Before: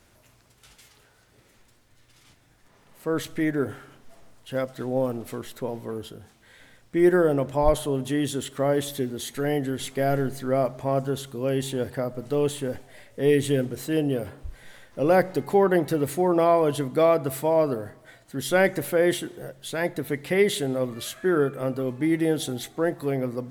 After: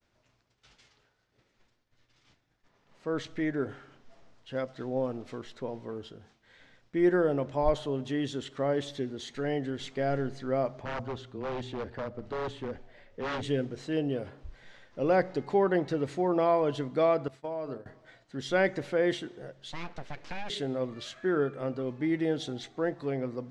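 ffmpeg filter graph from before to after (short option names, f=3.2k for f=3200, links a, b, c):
-filter_complex "[0:a]asettb=1/sr,asplit=3[a][b][c];[a]atrim=end=10.804[d];[b]atrim=start=10.8:end=13.43,asetpts=PTS-STARTPTS,afade=t=in:d=0.004:c=qsin,afade=t=out:st=2.626:d=0.004:c=qsin,lowpass=f=2.7k:p=1,afreqshift=-16,aeval=exprs='0.075*(abs(mod(val(0)/0.075+3,4)-2)-1)':c=same[e];[c]atrim=start=13.426[f];[d][e]acrossfade=d=0.004:c1=hsin:c2=qsin[g];[g][f]acrossfade=d=0.004:c1=qsin:c2=hsin,asettb=1/sr,asplit=3[h][i][j];[h]atrim=end=17.284[k];[i]atrim=start=17.28:end=17.86,asetpts=PTS-STARTPTS,afade=t=in:d=0.004:c=qsin,afade=t=out:st=0.576:d=0.004:c=qsin,bandreject=f=50:t=h:w=6,bandreject=f=100:t=h:w=6,bandreject=f=150:t=h:w=6,bandreject=f=200:t=h:w=6,bandreject=f=250:t=h:w=6,bandreject=f=300:t=h:w=6,bandreject=f=350:t=h:w=6,bandreject=f=400:t=h:w=6,bandreject=f=450:t=h:w=6,agate=range=-33dB:threshold=-25dB:ratio=3:release=100:detection=peak,acompressor=threshold=-26dB:ratio=6:attack=3.2:release=140:knee=1:detection=peak[l];[j]atrim=start=17.856[m];[k][l]acrossfade=d=0.004:c1=hsin:c2=qsin[n];[n][m]acrossfade=d=0.004:c1=qsin:c2=hsin,asettb=1/sr,asplit=3[o][p][q];[o]atrim=end=19.724[r];[p]atrim=start=19.72:end=20.5,asetpts=PTS-STARTPTS,afade=t=in:d=0.004:c=qsin,afade=t=out:st=0.776:d=0.004:c=qsin,highpass=f=150:w=0.5412,highpass=f=150:w=1.3066,acompressor=threshold=-25dB:ratio=6:attack=3.2:release=140:knee=1:detection=peak,aeval=exprs='abs(val(0))':c=same[s];[q]atrim=start=20.496[t];[r][s]acrossfade=d=0.004:c1=hsin:c2=qsin[u];[u][t]acrossfade=d=0.004:c1=qsin:c2=hsin,lowpass=f=6k:w=0.5412,lowpass=f=6k:w=1.3066,agate=range=-33dB:threshold=-53dB:ratio=3:detection=peak,equalizer=f=67:t=o:w=1.8:g=-3,volume=-5.5dB"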